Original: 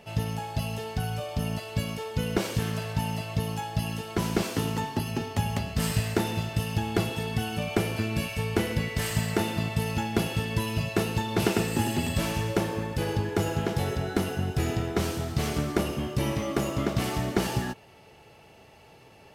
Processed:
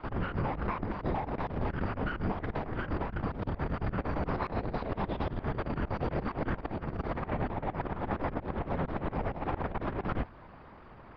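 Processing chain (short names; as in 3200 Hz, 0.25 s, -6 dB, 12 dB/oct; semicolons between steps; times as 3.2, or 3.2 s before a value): minimum comb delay 0.37 ms; LPC vocoder at 8 kHz whisper; LPF 1300 Hz 24 dB/oct; negative-ratio compressor -33 dBFS, ratio -0.5; speed mistake 45 rpm record played at 78 rpm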